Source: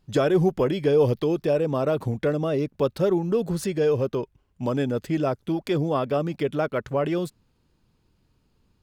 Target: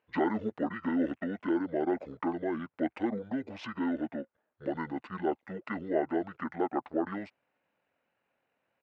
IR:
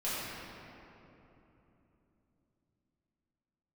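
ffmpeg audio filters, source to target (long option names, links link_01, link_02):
-af "asetrate=25476,aresample=44100,atempo=1.73107,asuperpass=centerf=1000:order=4:qfactor=0.5"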